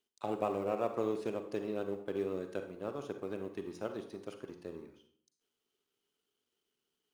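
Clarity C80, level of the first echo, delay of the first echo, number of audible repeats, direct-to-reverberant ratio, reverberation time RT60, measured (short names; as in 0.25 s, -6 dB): 12.5 dB, none, none, none, 7.0 dB, 0.55 s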